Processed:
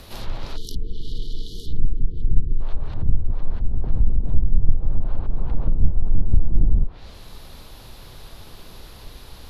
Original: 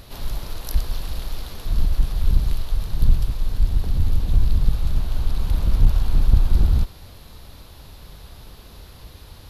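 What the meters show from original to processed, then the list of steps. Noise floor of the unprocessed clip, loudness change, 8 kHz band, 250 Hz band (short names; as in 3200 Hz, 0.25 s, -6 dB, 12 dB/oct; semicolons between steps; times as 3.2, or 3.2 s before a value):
-44 dBFS, -3.5 dB, n/a, -0.5 dB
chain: treble ducked by the level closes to 390 Hz, closed at -12 dBFS; frequency shift -32 Hz; spectral delete 0.56–2.61, 490–2900 Hz; gain +2.5 dB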